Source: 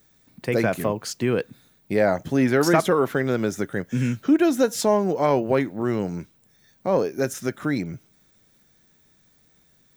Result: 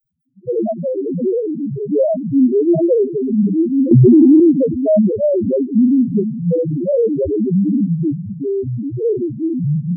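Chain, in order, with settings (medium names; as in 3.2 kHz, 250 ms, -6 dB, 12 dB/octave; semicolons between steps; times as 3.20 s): spring tank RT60 2.2 s, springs 35 ms, chirp 70 ms, DRR 11 dB; waveshaping leveller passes 2; ever faster or slower copies 356 ms, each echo -4 st, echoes 3; loudest bins only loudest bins 1; 3.91–4.40 s: level flattener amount 100%; trim +6.5 dB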